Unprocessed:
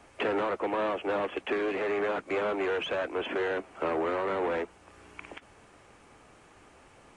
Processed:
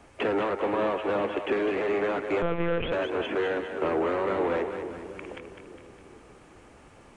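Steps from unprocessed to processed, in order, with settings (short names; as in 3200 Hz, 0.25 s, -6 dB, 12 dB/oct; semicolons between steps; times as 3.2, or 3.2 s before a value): low shelf 420 Hz +5.5 dB; on a send: split-band echo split 440 Hz, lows 0.421 s, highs 0.204 s, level -7.5 dB; 2.42–2.92 on the sum: monotone LPC vocoder at 8 kHz 170 Hz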